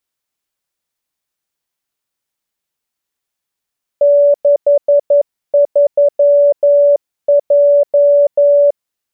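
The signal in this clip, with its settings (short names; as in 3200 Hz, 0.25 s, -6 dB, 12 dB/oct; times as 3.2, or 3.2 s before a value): Morse "63J" 11 wpm 575 Hz -5.5 dBFS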